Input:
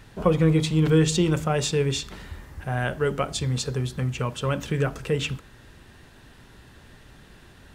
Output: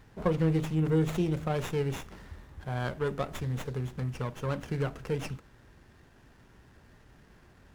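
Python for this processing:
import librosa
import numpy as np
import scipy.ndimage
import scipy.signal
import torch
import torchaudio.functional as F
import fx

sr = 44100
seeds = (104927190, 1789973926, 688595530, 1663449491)

y = fx.peak_eq(x, sr, hz=fx.line((0.74, 4500.0), (1.39, 1100.0)), db=-14.0, octaves=0.76, at=(0.74, 1.39), fade=0.02)
y = fx.running_max(y, sr, window=9)
y = y * librosa.db_to_amplitude(-7.0)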